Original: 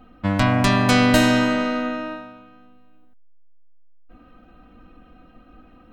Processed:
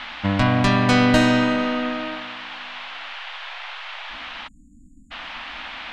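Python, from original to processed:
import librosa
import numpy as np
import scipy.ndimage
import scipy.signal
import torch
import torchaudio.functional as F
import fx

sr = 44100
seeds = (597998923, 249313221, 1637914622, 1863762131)

y = fx.air_absorb(x, sr, metres=61.0)
y = fx.dmg_noise_band(y, sr, seeds[0], low_hz=690.0, high_hz=3400.0, level_db=-35.0)
y = fx.spec_erase(y, sr, start_s=4.47, length_s=0.64, low_hz=320.0, high_hz=6700.0)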